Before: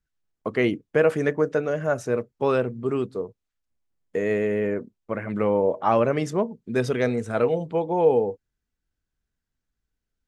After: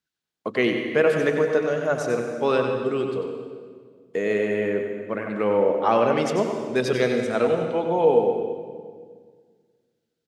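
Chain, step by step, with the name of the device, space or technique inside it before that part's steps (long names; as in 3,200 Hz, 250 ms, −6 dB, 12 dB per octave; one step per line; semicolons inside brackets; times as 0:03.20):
PA in a hall (high-pass filter 170 Hz 12 dB per octave; parametric band 3,900 Hz +7 dB 1.1 octaves; single-tap delay 94 ms −8 dB; convolution reverb RT60 1.7 s, pre-delay 111 ms, DRR 6 dB)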